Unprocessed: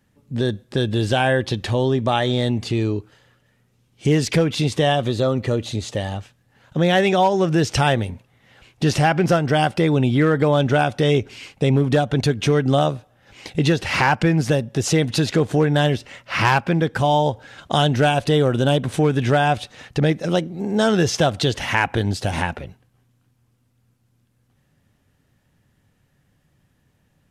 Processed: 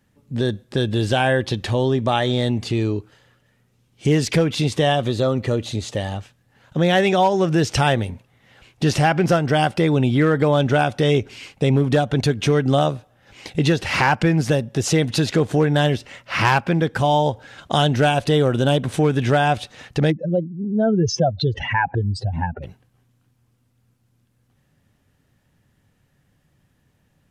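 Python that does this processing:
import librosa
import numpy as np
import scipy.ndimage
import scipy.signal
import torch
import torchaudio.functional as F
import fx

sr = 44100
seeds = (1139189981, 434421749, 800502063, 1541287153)

y = fx.spec_expand(x, sr, power=2.5, at=(20.1, 22.62), fade=0.02)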